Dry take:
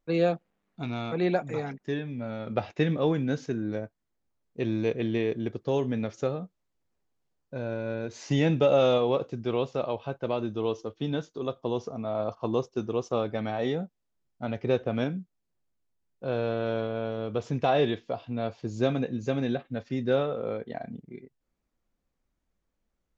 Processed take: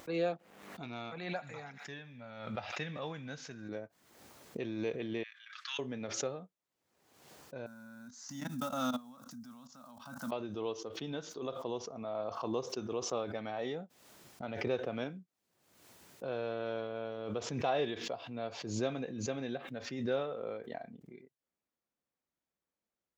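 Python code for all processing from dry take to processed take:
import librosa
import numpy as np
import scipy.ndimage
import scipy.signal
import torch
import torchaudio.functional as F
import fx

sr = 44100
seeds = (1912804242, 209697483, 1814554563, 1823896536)

y = fx.chain(x, sr, fx.peak_eq(hz=360.0, db=-12.0, octaves=1.2),
    fx.echo_wet_highpass(ms=78, feedback_pct=58, hz=1500.0, wet_db=-17.0), at=(1.1, 3.69))
y = fx.chain(y, sr, fx.steep_highpass(hz=1300.0, slope=48),
    fx.air_absorb(metres=100.0), at=(5.23, 5.79))
y = fx.chain(y, sr, fx.block_float(bits=7),
    fx.level_steps(step_db=22),
    fx.curve_eq(hz=(160.0, 250.0, 400.0, 590.0, 1400.0, 2500.0, 5600.0), db=(0, 15, -29, -7, 8, -10, 12)), at=(7.66, 10.32))
y = scipy.signal.sosfilt(scipy.signal.butter(2, 150.0, 'highpass', fs=sr, output='sos'), y)
y = fx.peak_eq(y, sr, hz=200.0, db=-5.0, octaves=1.9)
y = fx.pre_swell(y, sr, db_per_s=55.0)
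y = F.gain(torch.from_numpy(y), -7.0).numpy()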